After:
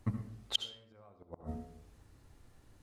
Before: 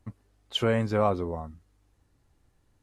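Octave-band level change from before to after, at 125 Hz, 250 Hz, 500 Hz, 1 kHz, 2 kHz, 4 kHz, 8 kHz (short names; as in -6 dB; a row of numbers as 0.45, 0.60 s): -9.5 dB, -12.5 dB, -25.0 dB, -22.0 dB, -19.5 dB, -3.0 dB, n/a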